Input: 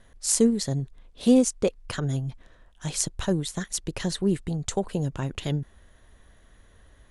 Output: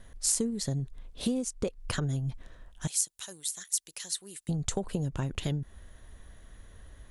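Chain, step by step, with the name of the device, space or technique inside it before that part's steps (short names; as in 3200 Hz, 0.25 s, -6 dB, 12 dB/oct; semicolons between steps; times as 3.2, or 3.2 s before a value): 2.87–4.49 differentiator; ASMR close-microphone chain (low shelf 170 Hz +5.5 dB; compressor 10:1, threshold -27 dBFS, peak gain reduction 15.5 dB; high shelf 8200 Hz +6.5 dB)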